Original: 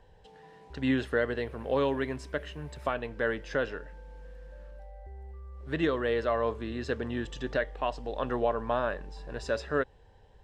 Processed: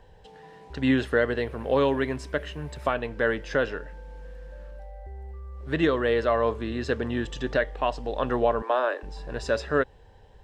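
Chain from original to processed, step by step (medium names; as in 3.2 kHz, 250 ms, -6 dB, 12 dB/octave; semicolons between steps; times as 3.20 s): 8.62–9.03 s: steep high-pass 270 Hz 96 dB/octave; trim +5 dB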